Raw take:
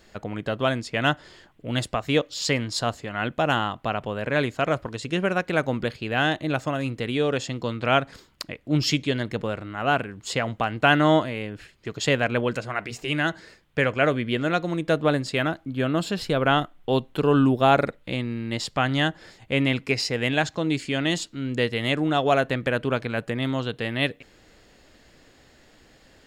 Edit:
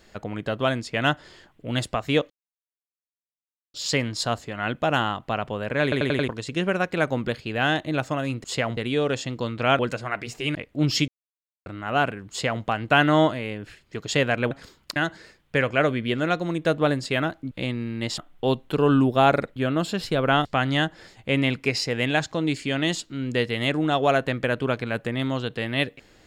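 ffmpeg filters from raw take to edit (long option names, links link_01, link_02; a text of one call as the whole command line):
ffmpeg -i in.wav -filter_complex "[0:a]asplit=19[link_01][link_02][link_03][link_04][link_05][link_06][link_07][link_08][link_09][link_10][link_11][link_12][link_13][link_14][link_15][link_16][link_17][link_18][link_19];[link_01]atrim=end=2.3,asetpts=PTS-STARTPTS,afade=type=out:start_time=2.296:duration=0.004:curve=hsin,apad=pad_dur=1.44[link_20];[link_02]atrim=start=2.3:end=4.482,asetpts=PTS-STARTPTS,afade=type=in:duration=0.004:curve=hsin[link_21];[link_03]atrim=start=4.388:end=4.482[link_22];[link_04]atrim=start=4.388:end=4.482[link_23];[link_05]atrim=start=4.388:end=4.482[link_24];[link_06]atrim=start=4.388:end=4.482[link_25];[link_07]atrim=start=4.838:end=7.002[link_26];[link_08]atrim=start=10.218:end=10.552[link_27];[link_09]atrim=start=6.998:end=8.022[link_28];[link_10]atrim=start=12.428:end=13.192[link_29];[link_11]atrim=start=8.468:end=9,asetpts=PTS-STARTPTS,afade=type=out:start_time=0.528:duration=0.004:curve=hsin[link_30];[link_12]atrim=start=9:end=9.58,asetpts=PTS-STARTPTS,volume=0[link_31];[link_13]atrim=start=9.58:end=12.432,asetpts=PTS-STARTPTS,afade=type=in:duration=0.004:curve=hsin[link_32];[link_14]atrim=start=8.018:end=8.472[link_33];[link_15]atrim=start=13.188:end=15.742[link_34];[link_16]atrim=start=18.008:end=18.682[link_35];[link_17]atrim=start=16.628:end=18.012[link_36];[link_18]atrim=start=15.738:end=16.632[link_37];[link_19]atrim=start=18.678[link_38];[link_20][link_21]concat=n=2:v=0:a=1[link_39];[link_39][link_22]acrossfade=duration=0.004:curve1=hsin:curve2=hsin[link_40];[link_40][link_23]acrossfade=duration=0.004:curve1=hsin:curve2=hsin[link_41];[link_41][link_24]acrossfade=duration=0.004:curve1=hsin:curve2=hsin[link_42];[link_42][link_25]acrossfade=duration=0.004:curve1=hsin:curve2=hsin[link_43];[link_43][link_26]acrossfade=duration=0.004:curve1=hsin:curve2=hsin[link_44];[link_44][link_27]acrossfade=duration=0.004:curve1=hsin:curve2=hsin[link_45];[link_45][link_28]acrossfade=duration=0.004:curve1=hsin:curve2=hsin[link_46];[link_46][link_29]acrossfade=duration=0.004:curve1=hsin:curve2=hsin[link_47];[link_30][link_31][link_32]concat=n=3:v=0:a=1[link_48];[link_47][link_48]acrossfade=duration=0.004:curve1=hsin:curve2=hsin[link_49];[link_49][link_33]acrossfade=duration=0.004:curve1=hsin:curve2=hsin[link_50];[link_50][link_34]acrossfade=duration=0.004:curve1=hsin:curve2=hsin[link_51];[link_51][link_35]acrossfade=duration=0.004:curve1=hsin:curve2=hsin[link_52];[link_52][link_36]acrossfade=duration=0.004:curve1=hsin:curve2=hsin[link_53];[link_53][link_37]acrossfade=duration=0.004:curve1=hsin:curve2=hsin[link_54];[link_54][link_38]acrossfade=duration=0.004:curve1=hsin:curve2=hsin" out.wav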